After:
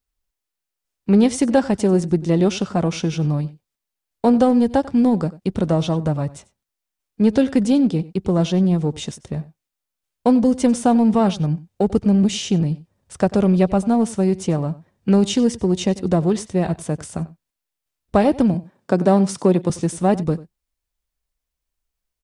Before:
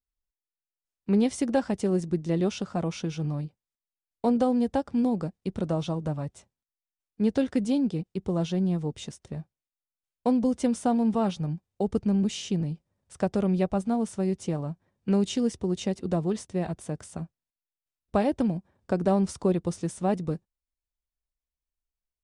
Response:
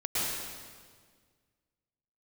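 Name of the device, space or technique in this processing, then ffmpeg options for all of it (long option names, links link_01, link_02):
parallel distortion: -filter_complex "[0:a]asplit=2[link_01][link_02];[link_02]asoftclip=type=hard:threshold=-25.5dB,volume=-11dB[link_03];[link_01][link_03]amix=inputs=2:normalize=0,asettb=1/sr,asplit=3[link_04][link_05][link_06];[link_04]atrim=end=18.544[link_07];[link_05]atrim=start=18.54:end=19.7,asetpts=PTS-STARTPTS,afade=type=in:duration=0.004:curve=qsin,afade=type=out:start_time=1.156:duration=0.004:curve=qsin,highpass=frequency=140:width=0.5412,highpass=frequency=140:width=1.3066[link_08];[link_06]atrim=start=19.696[link_09];[link_07][link_08]acrossfade=duration=0.004:curve1=hsin:curve2=qsin[link_10];[link_10][link_09]acrossfade=duration=0.004:curve1=qsin:curve2=hsin,asplit=2[link_11][link_12];[link_12]adelay=93.29,volume=-19dB,highshelf=frequency=4000:gain=-2.1[link_13];[link_11][link_13]amix=inputs=2:normalize=0,volume=7.5dB"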